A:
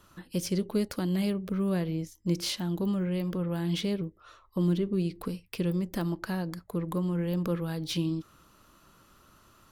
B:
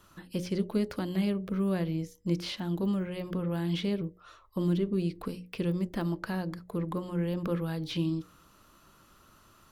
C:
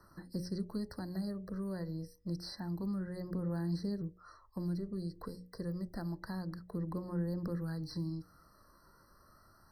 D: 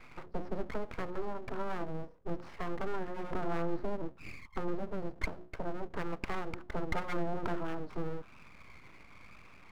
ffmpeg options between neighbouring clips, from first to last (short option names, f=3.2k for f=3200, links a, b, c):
-filter_complex "[0:a]bandreject=f=60:t=h:w=6,bandreject=f=120:t=h:w=6,bandreject=f=180:t=h:w=6,bandreject=f=240:t=h:w=6,bandreject=f=300:t=h:w=6,bandreject=f=360:t=h:w=6,bandreject=f=420:t=h:w=6,bandreject=f=480:t=h:w=6,bandreject=f=540:t=h:w=6,bandreject=f=600:t=h:w=6,acrossover=split=4000[a][b];[b]acompressor=threshold=-51dB:ratio=4:attack=1:release=60[c];[a][c]amix=inputs=2:normalize=0"
-filter_complex "[0:a]acrossover=split=150|3000[a][b][c];[b]acompressor=threshold=-40dB:ratio=2[d];[a][d][c]amix=inputs=3:normalize=0,aphaser=in_gain=1:out_gain=1:delay=2.1:decay=0.3:speed=0.28:type=triangular,afftfilt=real='re*eq(mod(floor(b*sr/1024/2000),2),0)':imag='im*eq(mod(floor(b*sr/1024/2000),2),0)':win_size=1024:overlap=0.75,volume=-4dB"
-af "lowpass=f=1.1k:t=q:w=5.2,aeval=exprs='abs(val(0))':c=same,volume=4.5dB"